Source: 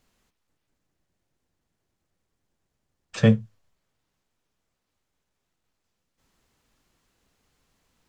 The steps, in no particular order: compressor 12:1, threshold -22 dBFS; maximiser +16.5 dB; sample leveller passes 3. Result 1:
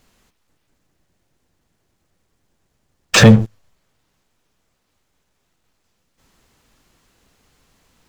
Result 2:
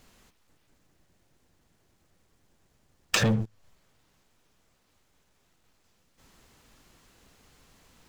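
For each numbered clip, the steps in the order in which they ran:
compressor > sample leveller > maximiser; sample leveller > maximiser > compressor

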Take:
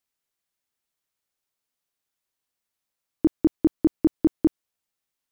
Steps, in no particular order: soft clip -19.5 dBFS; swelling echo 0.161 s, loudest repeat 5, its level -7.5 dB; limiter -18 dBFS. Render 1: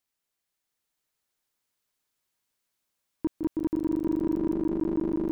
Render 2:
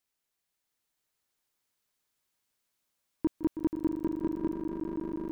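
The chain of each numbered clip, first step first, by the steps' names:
swelling echo > limiter > soft clip; limiter > soft clip > swelling echo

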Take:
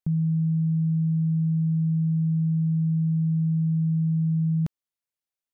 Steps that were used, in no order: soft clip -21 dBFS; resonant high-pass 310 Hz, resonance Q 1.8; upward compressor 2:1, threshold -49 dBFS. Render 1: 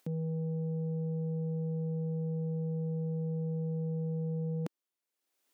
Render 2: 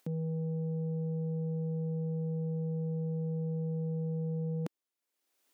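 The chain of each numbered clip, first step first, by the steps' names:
soft clip > upward compressor > resonant high-pass; soft clip > resonant high-pass > upward compressor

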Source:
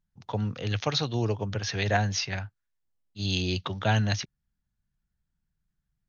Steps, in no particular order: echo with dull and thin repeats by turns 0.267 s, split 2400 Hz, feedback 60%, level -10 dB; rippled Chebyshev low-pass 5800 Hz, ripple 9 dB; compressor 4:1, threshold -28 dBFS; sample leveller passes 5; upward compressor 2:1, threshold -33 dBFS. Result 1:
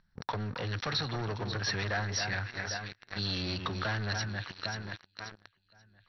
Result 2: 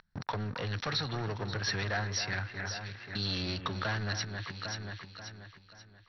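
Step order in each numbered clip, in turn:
echo with dull and thin repeats by turns > sample leveller > compressor > upward compressor > rippled Chebyshev low-pass; upward compressor > sample leveller > echo with dull and thin repeats by turns > compressor > rippled Chebyshev low-pass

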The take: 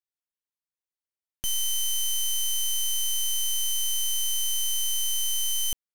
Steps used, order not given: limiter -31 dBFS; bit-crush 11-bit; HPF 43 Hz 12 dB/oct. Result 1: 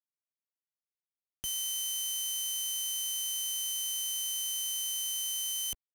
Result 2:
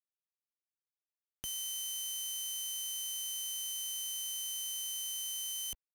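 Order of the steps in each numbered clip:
limiter > HPF > bit-crush; HPF > bit-crush > limiter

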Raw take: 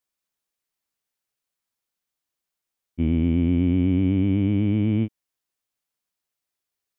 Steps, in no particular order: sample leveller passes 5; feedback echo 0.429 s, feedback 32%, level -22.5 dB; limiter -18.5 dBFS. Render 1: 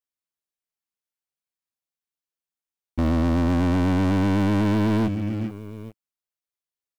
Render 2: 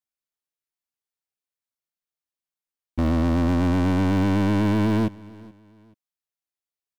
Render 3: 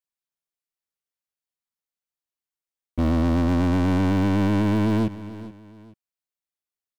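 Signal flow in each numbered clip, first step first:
feedback echo > limiter > sample leveller; limiter > sample leveller > feedback echo; sample leveller > feedback echo > limiter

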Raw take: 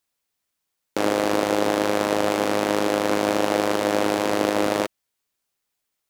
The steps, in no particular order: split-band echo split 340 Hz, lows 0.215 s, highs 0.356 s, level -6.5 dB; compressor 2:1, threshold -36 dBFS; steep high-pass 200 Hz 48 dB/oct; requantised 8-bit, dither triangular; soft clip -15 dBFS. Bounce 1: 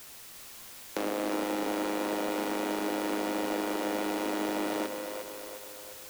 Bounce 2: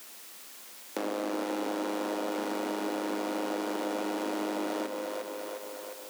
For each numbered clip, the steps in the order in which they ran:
steep high-pass > soft clip > compressor > requantised > split-band echo; soft clip > split-band echo > requantised > compressor > steep high-pass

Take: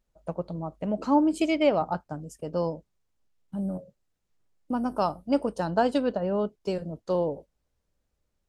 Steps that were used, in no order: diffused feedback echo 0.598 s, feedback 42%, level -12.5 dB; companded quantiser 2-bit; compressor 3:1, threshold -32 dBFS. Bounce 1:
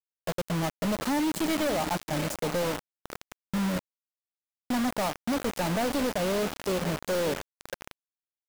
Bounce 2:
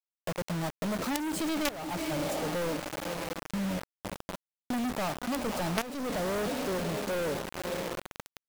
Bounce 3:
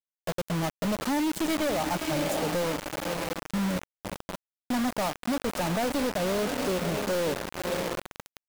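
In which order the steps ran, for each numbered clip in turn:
compressor > diffused feedback echo > companded quantiser; diffused feedback echo > companded quantiser > compressor; diffused feedback echo > compressor > companded quantiser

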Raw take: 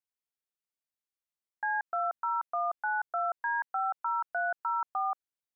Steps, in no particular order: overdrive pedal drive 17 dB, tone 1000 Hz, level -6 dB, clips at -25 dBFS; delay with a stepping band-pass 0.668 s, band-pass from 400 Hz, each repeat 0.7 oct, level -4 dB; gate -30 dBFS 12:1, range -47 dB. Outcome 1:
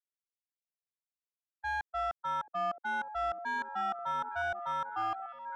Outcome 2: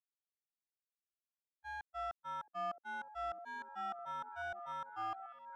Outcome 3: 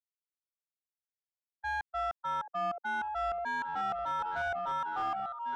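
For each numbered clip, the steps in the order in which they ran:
gate > overdrive pedal > delay with a stepping band-pass; overdrive pedal > gate > delay with a stepping band-pass; gate > delay with a stepping band-pass > overdrive pedal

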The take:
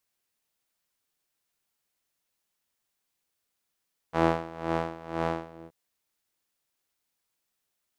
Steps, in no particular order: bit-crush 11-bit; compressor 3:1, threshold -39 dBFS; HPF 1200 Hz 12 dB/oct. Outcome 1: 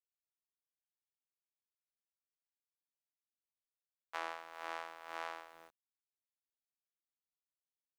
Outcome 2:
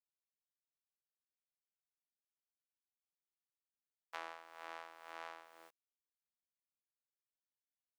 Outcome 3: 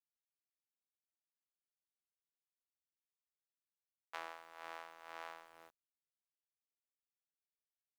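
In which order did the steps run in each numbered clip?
HPF > bit-crush > compressor; bit-crush > compressor > HPF; compressor > HPF > bit-crush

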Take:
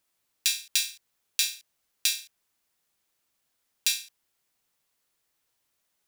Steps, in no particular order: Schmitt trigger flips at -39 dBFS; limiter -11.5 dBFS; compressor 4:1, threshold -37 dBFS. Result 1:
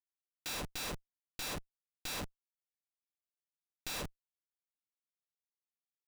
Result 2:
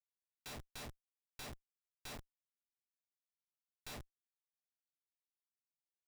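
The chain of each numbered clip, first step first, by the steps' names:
limiter > Schmitt trigger > compressor; limiter > compressor > Schmitt trigger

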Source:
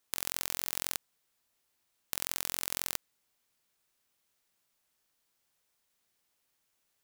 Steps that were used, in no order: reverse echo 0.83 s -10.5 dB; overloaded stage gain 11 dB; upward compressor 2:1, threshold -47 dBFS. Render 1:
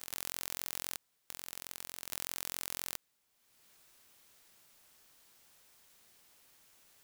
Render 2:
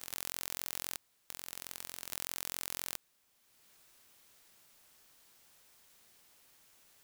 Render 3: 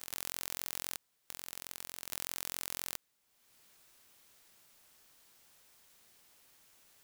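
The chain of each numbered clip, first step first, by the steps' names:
reverse echo > upward compressor > overloaded stage; upward compressor > reverse echo > overloaded stage; reverse echo > overloaded stage > upward compressor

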